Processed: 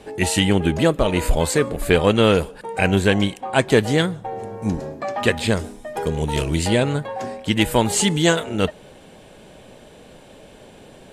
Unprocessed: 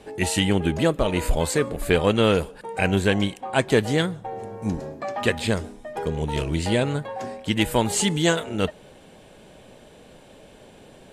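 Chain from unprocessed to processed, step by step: 5.59–6.68 high shelf 6700 Hz +8.5 dB; gain +3.5 dB

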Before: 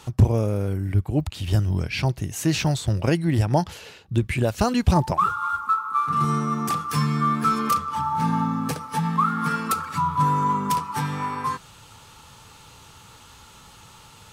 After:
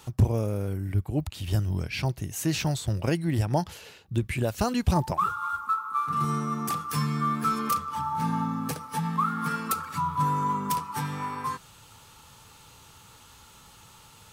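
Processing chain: high shelf 12000 Hz +10.5 dB; gain -5 dB

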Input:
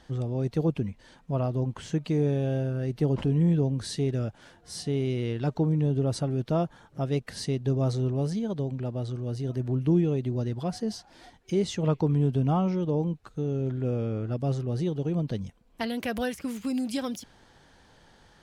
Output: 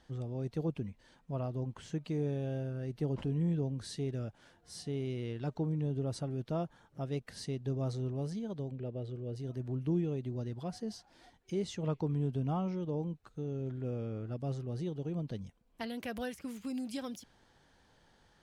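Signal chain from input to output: 8.71–9.36 EQ curve 300 Hz 0 dB, 440 Hz +7 dB, 950 Hz -7 dB, 2900 Hz +1 dB, 5800 Hz -10 dB; gain -9 dB

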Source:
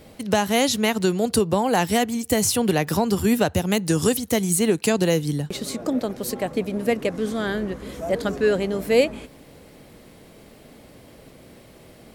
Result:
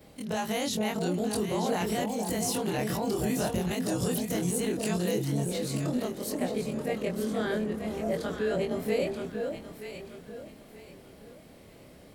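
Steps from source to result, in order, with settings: short-time reversal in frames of 56 ms; limiter -18 dBFS, peak gain reduction 9 dB; echo with dull and thin repeats by turns 0.466 s, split 840 Hz, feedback 55%, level -2.5 dB; gain -3.5 dB

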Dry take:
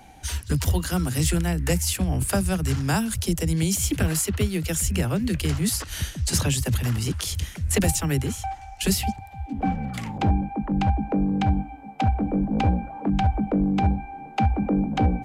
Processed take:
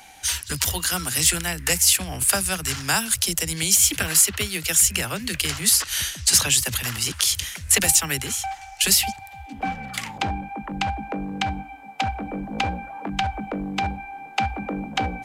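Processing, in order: tilt shelf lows -10 dB, about 720 Hz

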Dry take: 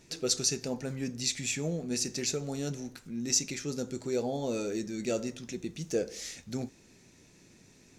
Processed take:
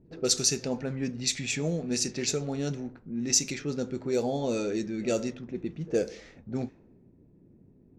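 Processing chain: pre-echo 63 ms -22 dB; low-pass opened by the level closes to 340 Hz, open at -26.5 dBFS; gain +3.5 dB

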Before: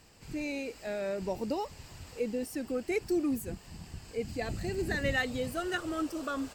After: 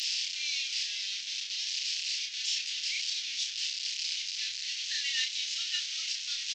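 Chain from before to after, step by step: delta modulation 32 kbps, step -30 dBFS; inverse Chebyshev high-pass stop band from 1100 Hz, stop band 50 dB; doubler 31 ms -3 dB; gain +8.5 dB

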